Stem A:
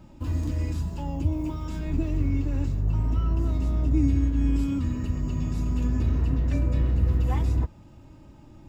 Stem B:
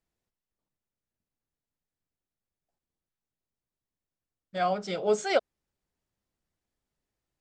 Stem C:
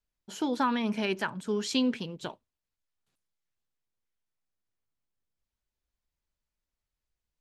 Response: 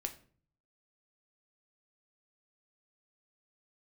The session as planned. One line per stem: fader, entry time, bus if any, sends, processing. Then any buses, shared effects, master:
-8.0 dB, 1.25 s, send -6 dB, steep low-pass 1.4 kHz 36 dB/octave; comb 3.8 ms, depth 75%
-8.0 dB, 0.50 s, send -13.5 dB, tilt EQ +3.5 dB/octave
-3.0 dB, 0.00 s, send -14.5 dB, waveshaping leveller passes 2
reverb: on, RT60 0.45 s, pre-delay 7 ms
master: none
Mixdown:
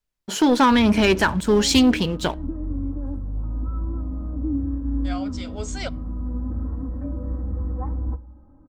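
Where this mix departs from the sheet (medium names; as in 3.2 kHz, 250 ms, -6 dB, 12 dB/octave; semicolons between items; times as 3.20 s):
stem A: entry 1.25 s -> 0.50 s; stem C -3.0 dB -> +6.0 dB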